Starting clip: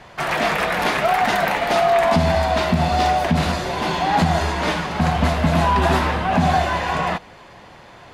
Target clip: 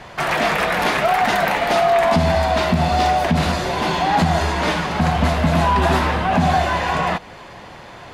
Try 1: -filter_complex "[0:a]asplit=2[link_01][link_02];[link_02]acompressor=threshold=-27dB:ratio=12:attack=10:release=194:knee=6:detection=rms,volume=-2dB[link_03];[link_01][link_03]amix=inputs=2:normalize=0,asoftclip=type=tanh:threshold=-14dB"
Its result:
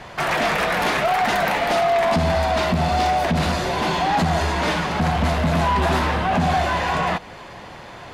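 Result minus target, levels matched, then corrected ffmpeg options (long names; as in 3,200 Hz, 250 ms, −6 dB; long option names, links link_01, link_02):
soft clipping: distortion +15 dB
-filter_complex "[0:a]asplit=2[link_01][link_02];[link_02]acompressor=threshold=-27dB:ratio=12:attack=10:release=194:knee=6:detection=rms,volume=-2dB[link_03];[link_01][link_03]amix=inputs=2:normalize=0,asoftclip=type=tanh:threshold=-4dB"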